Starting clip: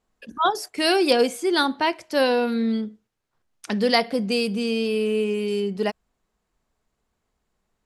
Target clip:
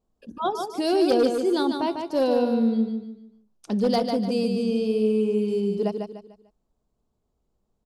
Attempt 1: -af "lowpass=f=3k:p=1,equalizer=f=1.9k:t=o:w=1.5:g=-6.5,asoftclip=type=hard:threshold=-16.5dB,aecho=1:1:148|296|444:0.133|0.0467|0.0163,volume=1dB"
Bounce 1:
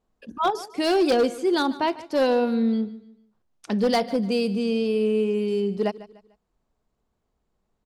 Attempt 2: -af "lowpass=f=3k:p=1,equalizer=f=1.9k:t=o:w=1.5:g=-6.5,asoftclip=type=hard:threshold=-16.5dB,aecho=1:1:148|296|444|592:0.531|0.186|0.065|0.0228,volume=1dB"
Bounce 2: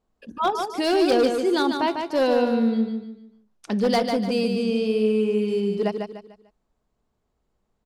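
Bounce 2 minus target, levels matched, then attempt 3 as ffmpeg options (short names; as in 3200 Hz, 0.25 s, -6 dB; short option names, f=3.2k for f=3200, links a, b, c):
2000 Hz band +6.5 dB
-af "lowpass=f=3k:p=1,equalizer=f=1.9k:t=o:w=1.5:g=-17.5,asoftclip=type=hard:threshold=-16.5dB,aecho=1:1:148|296|444|592:0.531|0.186|0.065|0.0228,volume=1dB"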